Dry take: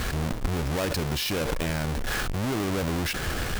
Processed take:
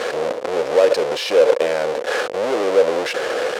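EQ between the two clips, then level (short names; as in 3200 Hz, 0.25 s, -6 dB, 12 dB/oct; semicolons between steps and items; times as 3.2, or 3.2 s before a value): resonant high-pass 500 Hz, resonance Q 6.2; air absorption 62 m; +6.0 dB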